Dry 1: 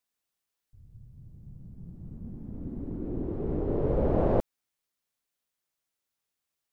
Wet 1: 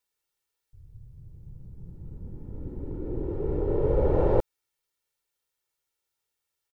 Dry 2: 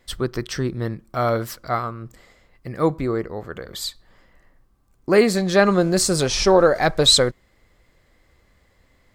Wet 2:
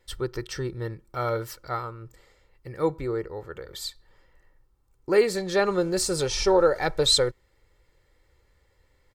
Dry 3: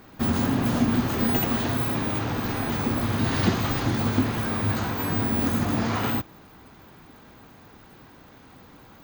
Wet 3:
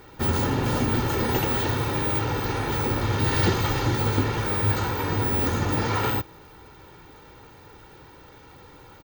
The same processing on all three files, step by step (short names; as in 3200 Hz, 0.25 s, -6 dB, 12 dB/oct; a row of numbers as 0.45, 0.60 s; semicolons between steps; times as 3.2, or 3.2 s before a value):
comb 2.2 ms, depth 60%; normalise peaks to -9 dBFS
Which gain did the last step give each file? +0.5, -7.5, +1.0 dB